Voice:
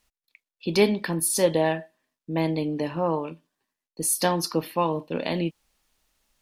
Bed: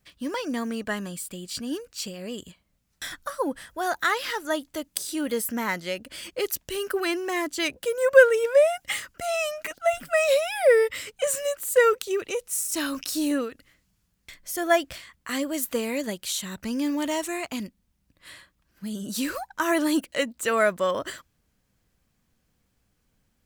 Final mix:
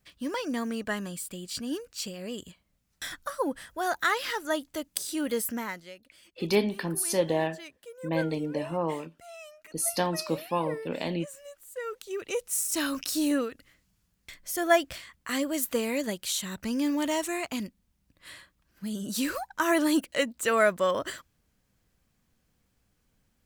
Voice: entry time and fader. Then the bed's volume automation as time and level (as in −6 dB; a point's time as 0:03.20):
5.75 s, −4.5 dB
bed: 0:05.50 −2 dB
0:06.02 −19 dB
0:11.79 −19 dB
0:12.37 −1 dB